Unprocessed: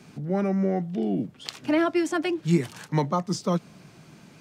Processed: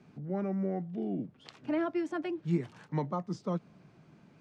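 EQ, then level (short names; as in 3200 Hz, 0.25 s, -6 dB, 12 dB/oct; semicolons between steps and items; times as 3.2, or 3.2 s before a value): air absorption 51 m; high shelf 2600 Hz -10.5 dB; -8.0 dB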